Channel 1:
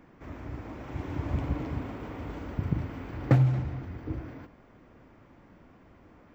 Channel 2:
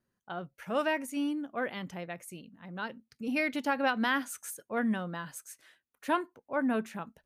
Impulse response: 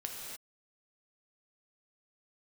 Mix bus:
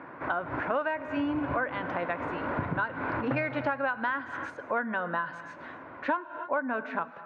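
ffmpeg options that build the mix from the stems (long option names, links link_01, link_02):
-filter_complex "[0:a]volume=1.5dB,asplit=2[link_01][link_02];[link_02]volume=-10dB[link_03];[1:a]acontrast=54,volume=-5.5dB,asplit=3[link_04][link_05][link_06];[link_05]volume=-12.5dB[link_07];[link_06]apad=whole_len=279878[link_08];[link_01][link_08]sidechaincompress=threshold=-50dB:ratio=8:attack=8.3:release=123[link_09];[2:a]atrim=start_sample=2205[link_10];[link_03][link_07]amix=inputs=2:normalize=0[link_11];[link_11][link_10]afir=irnorm=-1:irlink=0[link_12];[link_09][link_04][link_12]amix=inputs=3:normalize=0,acontrast=83,highpass=180,equalizer=frequency=200:width_type=q:width=4:gain=-10,equalizer=frequency=420:width_type=q:width=4:gain=-3,equalizer=frequency=590:width_type=q:width=4:gain=5,equalizer=frequency=1000:width_type=q:width=4:gain=9,equalizer=frequency=1500:width_type=q:width=4:gain=9,equalizer=frequency=3100:width_type=q:width=4:gain=-6,lowpass=frequency=3300:width=0.5412,lowpass=frequency=3300:width=1.3066,acompressor=threshold=-26dB:ratio=10"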